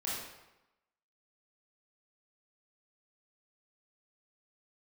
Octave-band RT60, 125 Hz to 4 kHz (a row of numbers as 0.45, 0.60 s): 0.90, 0.95, 0.95, 1.0, 0.90, 0.75 s